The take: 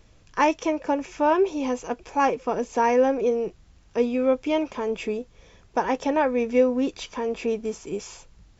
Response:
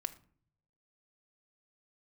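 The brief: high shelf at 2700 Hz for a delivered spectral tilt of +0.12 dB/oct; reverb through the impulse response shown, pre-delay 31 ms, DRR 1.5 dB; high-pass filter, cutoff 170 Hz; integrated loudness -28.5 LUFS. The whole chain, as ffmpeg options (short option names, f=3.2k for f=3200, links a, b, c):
-filter_complex "[0:a]highpass=170,highshelf=f=2.7k:g=-4,asplit=2[a][b];[1:a]atrim=start_sample=2205,adelay=31[c];[b][c]afir=irnorm=-1:irlink=0,volume=-1dB[d];[a][d]amix=inputs=2:normalize=0,volume=-5dB"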